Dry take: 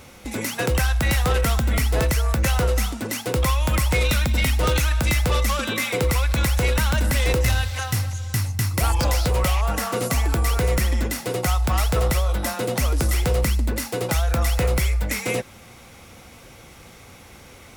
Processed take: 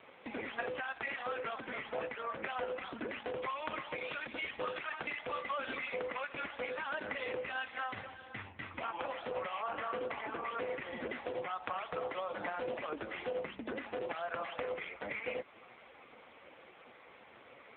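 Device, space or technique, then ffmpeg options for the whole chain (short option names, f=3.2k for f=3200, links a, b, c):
voicemail: -af "highpass=360,lowpass=3.1k,acompressor=threshold=-29dB:ratio=8,volume=-2.5dB" -ar 8000 -c:a libopencore_amrnb -b:a 5150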